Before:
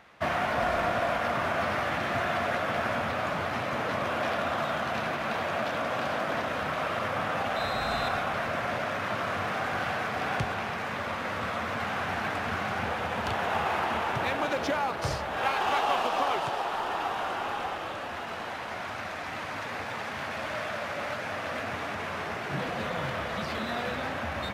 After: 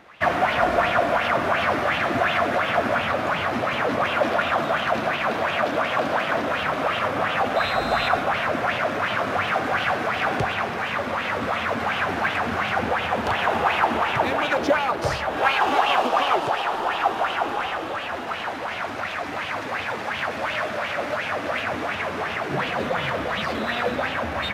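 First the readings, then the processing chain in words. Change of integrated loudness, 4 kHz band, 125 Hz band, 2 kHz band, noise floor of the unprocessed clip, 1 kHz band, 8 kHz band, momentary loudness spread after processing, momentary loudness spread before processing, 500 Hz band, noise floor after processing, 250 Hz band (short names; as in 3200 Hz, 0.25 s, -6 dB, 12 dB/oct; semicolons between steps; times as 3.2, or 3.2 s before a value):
+7.0 dB, +7.0 dB, +3.5 dB, +7.5 dB, -36 dBFS, +7.0 dB, +3.5 dB, 6 LU, 6 LU, +7.0 dB, -30 dBFS, +6.5 dB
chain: LFO bell 2.8 Hz 270–3100 Hz +12 dB; gain +3 dB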